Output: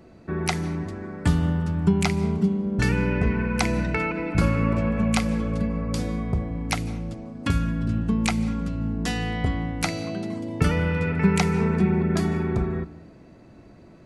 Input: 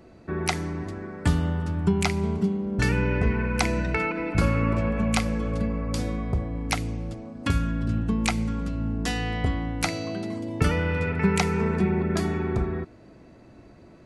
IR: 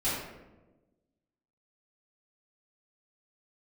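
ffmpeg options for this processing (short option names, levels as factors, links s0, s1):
-filter_complex "[0:a]equalizer=f=170:t=o:w=0.77:g=3.5,asplit=2[s0][s1];[1:a]atrim=start_sample=2205,afade=t=out:st=0.16:d=0.01,atrim=end_sample=7497,adelay=146[s2];[s1][s2]afir=irnorm=-1:irlink=0,volume=0.0473[s3];[s0][s3]amix=inputs=2:normalize=0"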